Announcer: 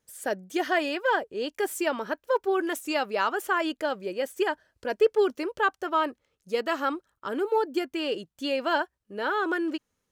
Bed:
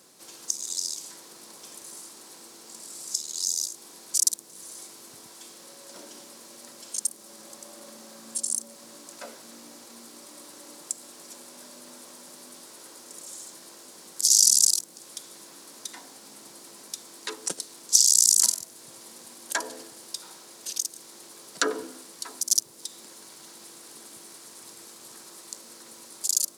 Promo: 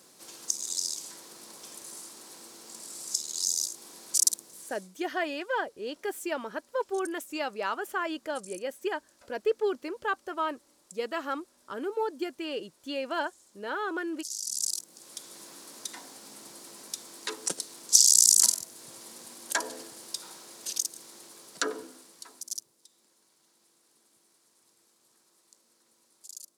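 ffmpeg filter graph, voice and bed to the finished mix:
-filter_complex "[0:a]adelay=4450,volume=-5.5dB[a];[1:a]volume=17dB,afade=t=out:st=4.34:d=0.58:silence=0.133352,afade=t=in:st=14.44:d=0.99:silence=0.125893,afade=t=out:st=20.7:d=2.11:silence=0.1[b];[a][b]amix=inputs=2:normalize=0"

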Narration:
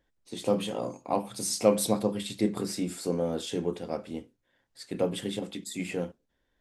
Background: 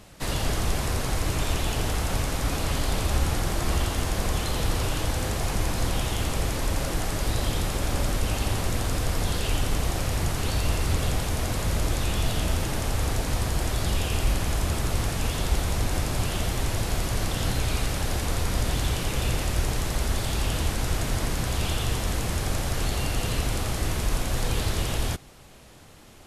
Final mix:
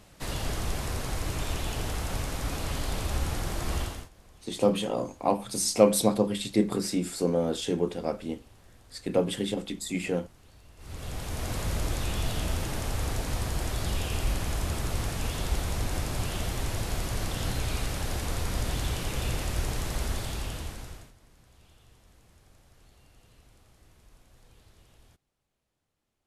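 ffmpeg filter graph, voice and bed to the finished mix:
-filter_complex "[0:a]adelay=4150,volume=3dB[a];[1:a]volume=19.5dB,afade=t=out:st=3.8:d=0.29:silence=0.0630957,afade=t=in:st=10.76:d=0.79:silence=0.0562341,afade=t=out:st=20.05:d=1.08:silence=0.0421697[b];[a][b]amix=inputs=2:normalize=0"

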